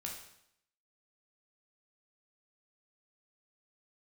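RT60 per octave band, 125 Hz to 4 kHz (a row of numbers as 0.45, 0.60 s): 0.75, 0.80, 0.75, 0.75, 0.70, 0.70 s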